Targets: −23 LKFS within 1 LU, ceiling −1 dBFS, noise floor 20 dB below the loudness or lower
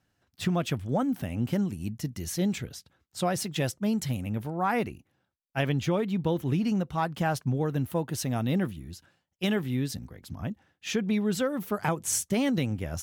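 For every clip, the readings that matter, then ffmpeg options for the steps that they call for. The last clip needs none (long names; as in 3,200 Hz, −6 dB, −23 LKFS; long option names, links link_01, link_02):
integrated loudness −29.5 LKFS; sample peak −15.5 dBFS; target loudness −23.0 LKFS
→ -af "volume=6.5dB"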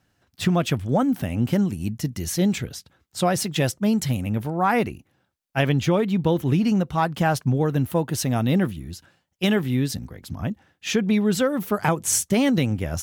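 integrated loudness −23.0 LKFS; sample peak −9.0 dBFS; background noise floor −71 dBFS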